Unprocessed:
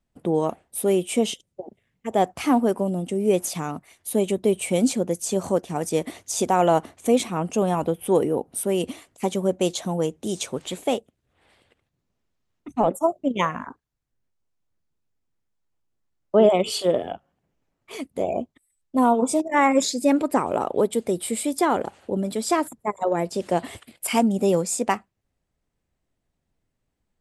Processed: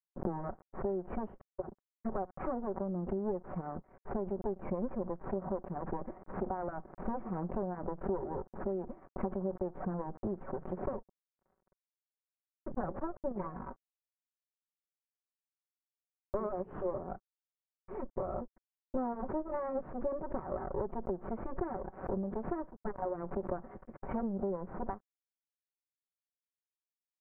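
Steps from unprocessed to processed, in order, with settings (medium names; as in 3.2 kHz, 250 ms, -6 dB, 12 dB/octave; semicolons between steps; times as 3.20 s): comb filter that takes the minimum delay 5.3 ms; compression 6:1, threshold -35 dBFS, peak gain reduction 19.5 dB; crossover distortion -57.5 dBFS; Bessel low-pass 840 Hz, order 8; swell ahead of each attack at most 120 dB/s; trim +3 dB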